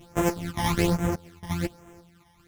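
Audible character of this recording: a buzz of ramps at a fixed pitch in blocks of 256 samples; phasing stages 12, 1.2 Hz, lowest notch 430–4400 Hz; random-step tremolo, depth 95%; a shimmering, thickened sound

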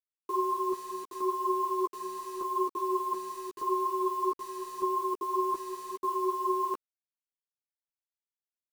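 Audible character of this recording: chopped level 0.83 Hz, depth 65%, duty 60%; a quantiser's noise floor 8-bit, dither none; a shimmering, thickened sound

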